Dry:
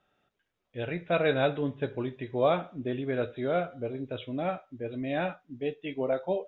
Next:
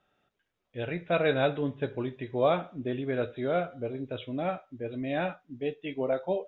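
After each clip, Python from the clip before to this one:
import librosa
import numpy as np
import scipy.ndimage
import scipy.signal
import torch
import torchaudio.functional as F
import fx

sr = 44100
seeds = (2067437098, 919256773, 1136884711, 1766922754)

y = x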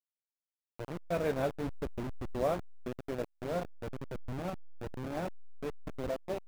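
y = fx.delta_hold(x, sr, step_db=-25.5)
y = fx.high_shelf(y, sr, hz=2400.0, db=-11.5)
y = F.gain(torch.from_numpy(y), -5.0).numpy()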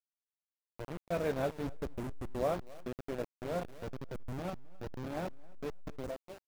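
y = fx.fade_out_tail(x, sr, length_s=0.58)
y = fx.echo_feedback(y, sr, ms=265, feedback_pct=25, wet_db=-24)
y = np.where(np.abs(y) >= 10.0 ** (-46.5 / 20.0), y, 0.0)
y = F.gain(torch.from_numpy(y), -1.5).numpy()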